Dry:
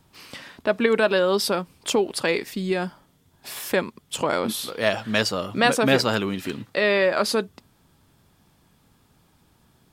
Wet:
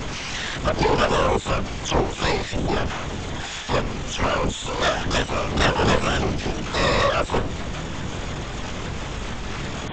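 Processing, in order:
converter with a step at zero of −19.5 dBFS
linear-prediction vocoder at 8 kHz whisper
pitch-shifted copies added +12 semitones −2 dB
level −4.5 dB

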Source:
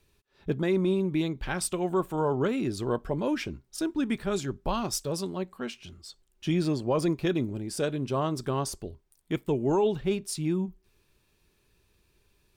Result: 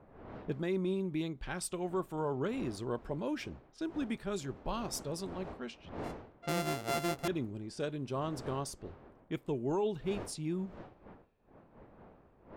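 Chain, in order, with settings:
0:05.98–0:07.28: samples sorted by size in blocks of 64 samples
wind on the microphone 610 Hz −44 dBFS
low-pass that shuts in the quiet parts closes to 1,700 Hz, open at −26.5 dBFS
level −8 dB

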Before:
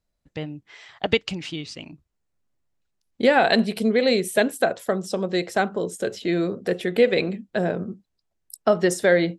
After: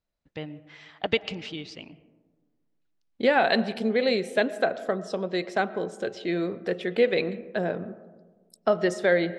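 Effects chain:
low-pass filter 4,800 Hz 12 dB per octave
low-shelf EQ 210 Hz −5.5 dB
convolution reverb RT60 1.4 s, pre-delay 75 ms, DRR 16.5 dB
level −3 dB

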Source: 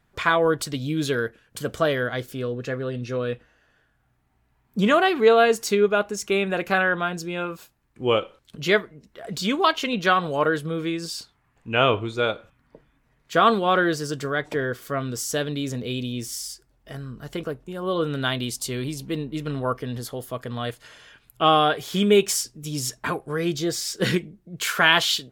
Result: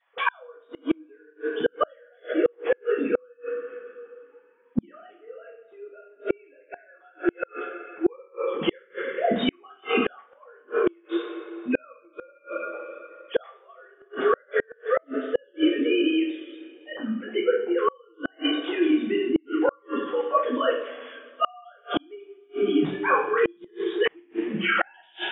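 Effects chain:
three sine waves on the formant tracks
coupled-rooms reverb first 0.53 s, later 2.5 s, from −18 dB, DRR −8 dB
gate with flip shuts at −12 dBFS, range −38 dB
level +2 dB

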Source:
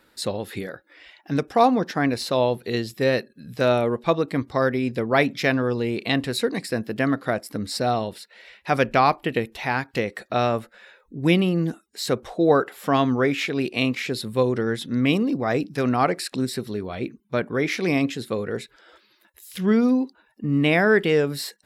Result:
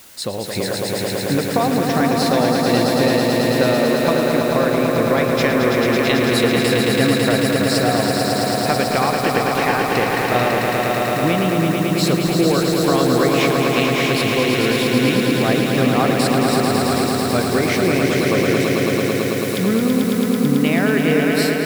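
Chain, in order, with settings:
in parallel at −8 dB: bit-depth reduction 6 bits, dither triangular
on the sum: downward compressor, threshold −20 dBFS, peak gain reduction 11 dB
echo that builds up and dies away 110 ms, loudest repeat 5, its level −5 dB
automatic gain control gain up to 4 dB

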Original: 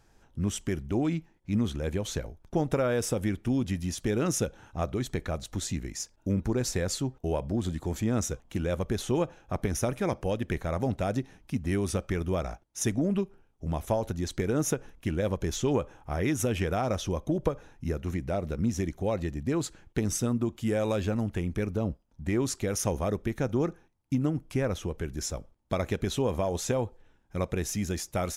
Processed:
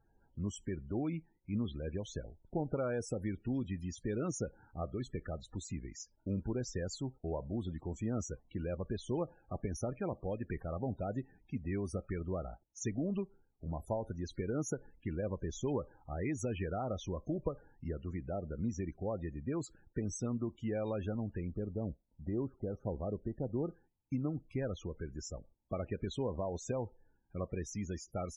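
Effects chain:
0:21.51–0:23.69: low-pass filter 1,000 Hz 12 dB per octave
spectral peaks only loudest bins 32
level −8.5 dB

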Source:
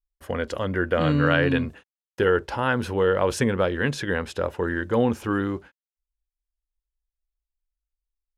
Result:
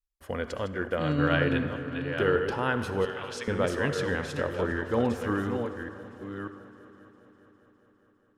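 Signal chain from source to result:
delay that plays each chunk backwards 589 ms, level −7 dB
0:03.05–0:03.48: resonant band-pass 3,700 Hz, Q 1
echo machine with several playback heads 203 ms, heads second and third, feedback 55%, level −19.5 dB
convolution reverb RT60 2.0 s, pre-delay 53 ms, DRR 10 dB
0:00.66–0:01.34: expander for the loud parts 1.5 to 1, over −27 dBFS
level −5 dB

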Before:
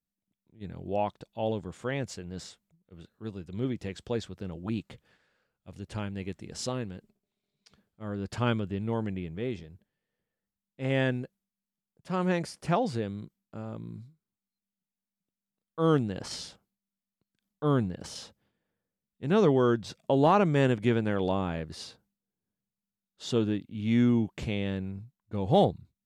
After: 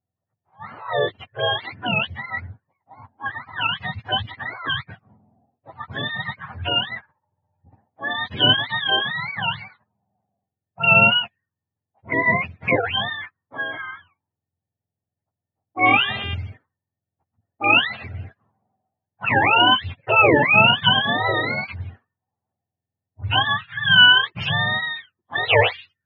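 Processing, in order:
frequency axis turned over on the octave scale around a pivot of 600 Hz
0:15.85–0:16.33: hum with harmonics 400 Hz, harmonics 9, −45 dBFS 0 dB per octave
envelope-controlled low-pass 750–2,900 Hz up, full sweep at −34 dBFS
level +7.5 dB

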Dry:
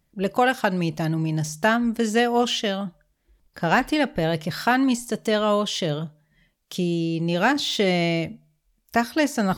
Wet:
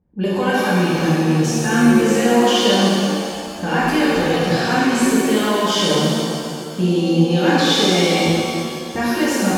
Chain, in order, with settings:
low-pass that shuts in the quiet parts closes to 720 Hz, open at −21 dBFS
brickwall limiter −19.5 dBFS, peak gain reduction 11.5 dB
notch comb filter 660 Hz
reverb with rising layers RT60 2.3 s, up +7 semitones, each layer −8 dB, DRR −8.5 dB
level +3 dB

